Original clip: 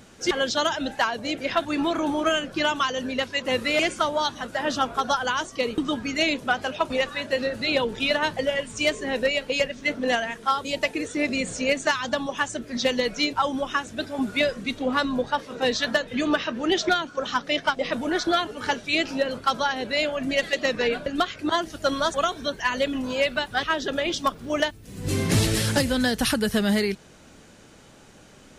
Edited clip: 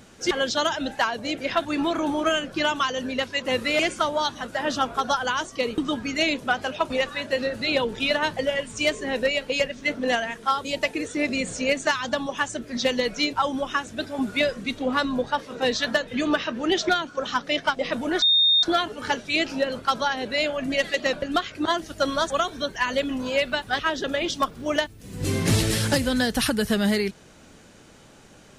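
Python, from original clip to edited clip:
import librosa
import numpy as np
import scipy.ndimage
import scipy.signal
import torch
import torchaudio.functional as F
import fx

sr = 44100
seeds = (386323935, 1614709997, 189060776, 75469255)

y = fx.edit(x, sr, fx.insert_tone(at_s=18.22, length_s=0.41, hz=3670.0, db=-15.0),
    fx.cut(start_s=20.72, length_s=0.25), tone=tone)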